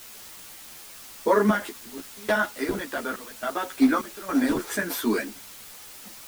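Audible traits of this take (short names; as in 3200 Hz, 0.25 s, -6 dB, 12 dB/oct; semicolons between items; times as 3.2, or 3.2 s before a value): random-step tremolo, depth 95%; a quantiser's noise floor 8-bit, dither triangular; a shimmering, thickened sound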